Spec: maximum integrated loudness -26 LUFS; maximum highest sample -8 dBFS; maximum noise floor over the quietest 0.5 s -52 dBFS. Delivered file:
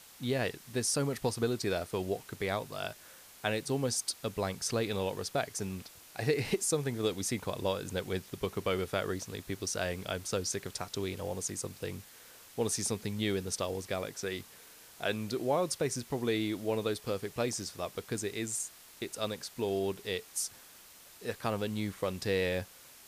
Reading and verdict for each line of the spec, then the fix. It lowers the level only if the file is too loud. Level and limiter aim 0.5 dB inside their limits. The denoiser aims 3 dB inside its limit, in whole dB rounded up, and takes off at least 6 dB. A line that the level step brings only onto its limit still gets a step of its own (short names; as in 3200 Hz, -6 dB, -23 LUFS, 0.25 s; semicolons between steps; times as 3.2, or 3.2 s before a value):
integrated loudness -34.5 LUFS: OK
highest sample -15.0 dBFS: OK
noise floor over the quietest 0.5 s -55 dBFS: OK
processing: none